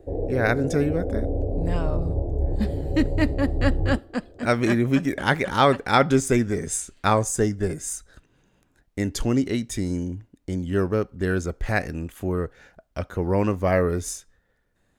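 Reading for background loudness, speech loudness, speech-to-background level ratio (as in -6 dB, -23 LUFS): -28.0 LUFS, -24.5 LUFS, 3.5 dB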